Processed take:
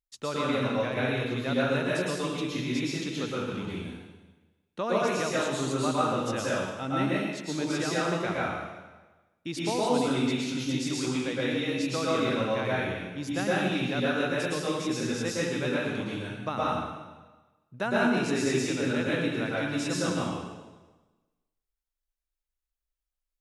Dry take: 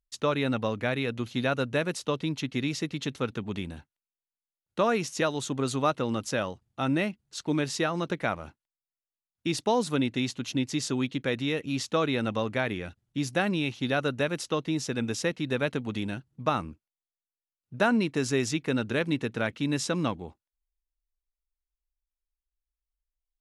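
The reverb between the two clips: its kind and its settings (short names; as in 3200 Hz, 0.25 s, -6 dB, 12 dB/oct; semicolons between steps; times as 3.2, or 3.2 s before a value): plate-style reverb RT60 1.2 s, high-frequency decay 0.95×, pre-delay 0.1 s, DRR -7 dB; gain -7 dB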